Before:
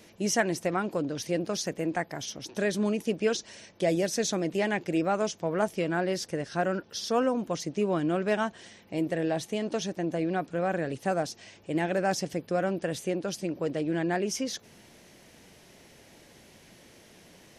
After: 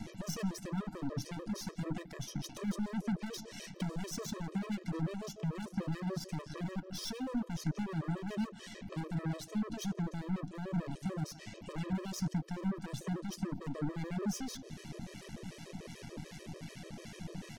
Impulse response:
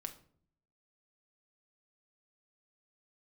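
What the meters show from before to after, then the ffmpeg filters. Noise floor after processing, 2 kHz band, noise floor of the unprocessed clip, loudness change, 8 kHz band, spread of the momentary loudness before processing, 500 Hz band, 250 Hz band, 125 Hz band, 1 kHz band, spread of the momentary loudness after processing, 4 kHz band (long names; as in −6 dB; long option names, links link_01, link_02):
−53 dBFS, −14.5 dB, −56 dBFS, −10.0 dB, −10.0 dB, 6 LU, −17.0 dB, −6.5 dB, −1.5 dB, −14.0 dB, 10 LU, −9.5 dB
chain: -filter_complex "[0:a]lowpass=9600,equalizer=frequency=150:width=0.8:gain=13,asplit=2[link_01][link_02];[link_02]adelay=163.3,volume=-24dB,highshelf=frequency=4000:gain=-3.67[link_03];[link_01][link_03]amix=inputs=2:normalize=0,asoftclip=type=hard:threshold=-24.5dB,acompressor=threshold=-45dB:ratio=2.5,acrossover=split=890[link_04][link_05];[link_04]aeval=exprs='val(0)*(1-0.5/2+0.5/2*cos(2*PI*2.6*n/s))':channel_layout=same[link_06];[link_05]aeval=exprs='val(0)*(1-0.5/2-0.5/2*cos(2*PI*2.6*n/s))':channel_layout=same[link_07];[link_06][link_07]amix=inputs=2:normalize=0,asplit=2[link_08][link_09];[1:a]atrim=start_sample=2205[link_10];[link_09][link_10]afir=irnorm=-1:irlink=0,volume=-2.5dB[link_11];[link_08][link_11]amix=inputs=2:normalize=0,acrossover=split=380|3000[link_12][link_13][link_14];[link_13]acompressor=threshold=-50dB:ratio=6[link_15];[link_12][link_15][link_14]amix=inputs=3:normalize=0,aeval=exprs='0.0376*(cos(1*acos(clip(val(0)/0.0376,-1,1)))-cos(1*PI/2))+0.00422*(cos(6*acos(clip(val(0)/0.0376,-1,1)))-cos(6*PI/2))+0.0075*(cos(8*acos(clip(val(0)/0.0376,-1,1)))-cos(8*PI/2))':channel_layout=same,afftfilt=real='re*gt(sin(2*PI*6.8*pts/sr)*(1-2*mod(floor(b*sr/1024/330),2)),0)':imag='im*gt(sin(2*PI*6.8*pts/sr)*(1-2*mod(floor(b*sr/1024/330),2)),0)':win_size=1024:overlap=0.75,volume=4dB"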